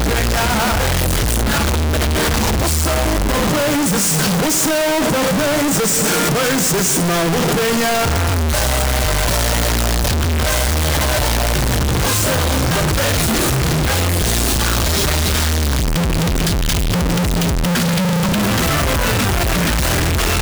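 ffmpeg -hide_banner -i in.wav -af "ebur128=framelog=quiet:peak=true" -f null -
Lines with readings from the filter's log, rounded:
Integrated loudness:
  I:         -15.9 LUFS
  Threshold: -25.9 LUFS
Loudness range:
  LRA:         1.7 LU
  Threshold: -35.9 LUFS
  LRA low:   -16.6 LUFS
  LRA high:  -14.9 LUFS
True peak:
  Peak:      -10.1 dBFS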